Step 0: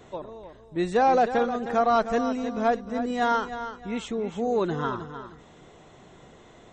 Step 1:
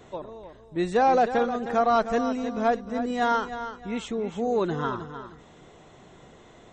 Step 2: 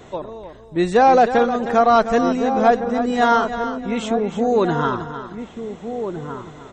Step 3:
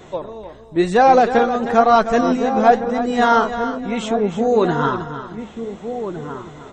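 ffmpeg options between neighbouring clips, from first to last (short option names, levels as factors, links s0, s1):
-af anull
-filter_complex "[0:a]asplit=2[s0][s1];[s1]adelay=1458,volume=0.398,highshelf=f=4000:g=-32.8[s2];[s0][s2]amix=inputs=2:normalize=0,volume=2.37"
-af "flanger=delay=5.3:depth=9.1:regen=60:speed=1:shape=sinusoidal,volume=1.88"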